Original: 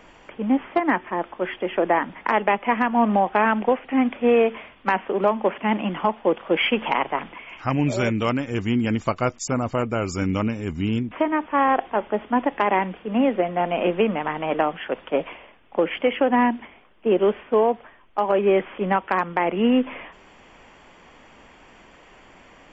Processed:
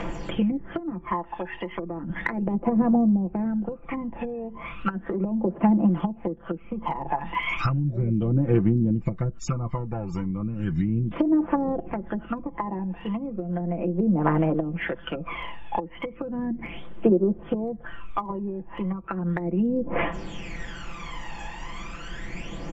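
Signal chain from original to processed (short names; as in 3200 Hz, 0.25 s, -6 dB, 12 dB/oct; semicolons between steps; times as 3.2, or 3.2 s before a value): treble ducked by the level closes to 380 Hz, closed at -17.5 dBFS; tone controls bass +5 dB, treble +2 dB; comb 5.9 ms, depth 73%; compressor 12:1, threshold -32 dBFS, peak gain reduction 20 dB; phaser 0.35 Hz, delay 1.2 ms, feedback 69%; gain +6 dB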